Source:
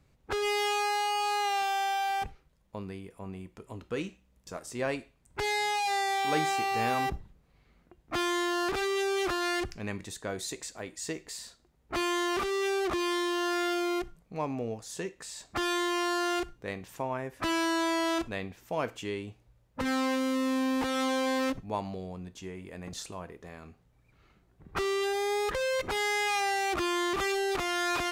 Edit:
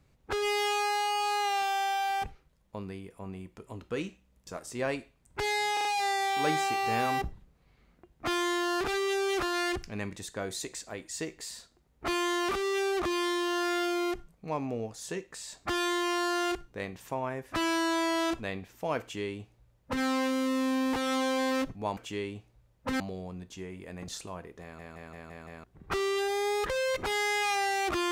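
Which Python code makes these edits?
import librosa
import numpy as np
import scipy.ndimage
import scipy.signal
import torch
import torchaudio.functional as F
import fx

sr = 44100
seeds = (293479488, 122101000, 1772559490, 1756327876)

y = fx.edit(x, sr, fx.stutter(start_s=5.73, slice_s=0.04, count=4),
    fx.duplicate(start_s=18.89, length_s=1.03, to_s=21.85),
    fx.stutter_over(start_s=23.47, slice_s=0.17, count=6), tone=tone)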